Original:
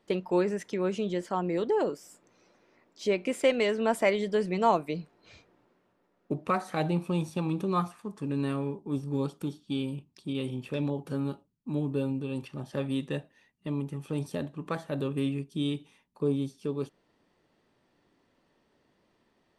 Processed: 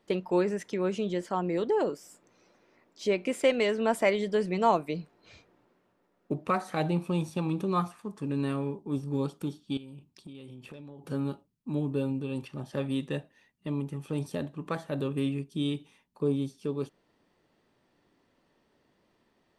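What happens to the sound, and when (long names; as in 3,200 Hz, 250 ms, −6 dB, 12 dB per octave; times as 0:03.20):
0:09.77–0:11.04: downward compressor 16 to 1, threshold −41 dBFS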